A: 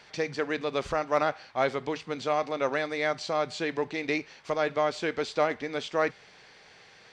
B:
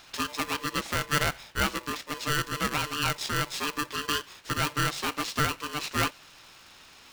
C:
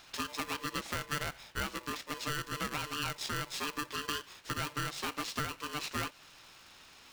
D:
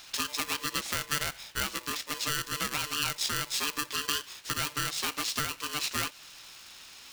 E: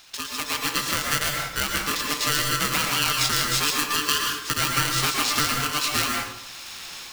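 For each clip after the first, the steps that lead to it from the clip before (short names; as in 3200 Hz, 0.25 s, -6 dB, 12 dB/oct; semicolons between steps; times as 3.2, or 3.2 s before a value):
tilt +2 dB/oct; polarity switched at an audio rate 740 Hz
compressor 4:1, threshold -28 dBFS, peak gain reduction 7.5 dB; gain -4 dB
high shelf 2400 Hz +11 dB
AGC gain up to 11.5 dB; plate-style reverb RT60 0.79 s, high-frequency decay 0.6×, pre-delay 0.105 s, DRR 0 dB; gain -1.5 dB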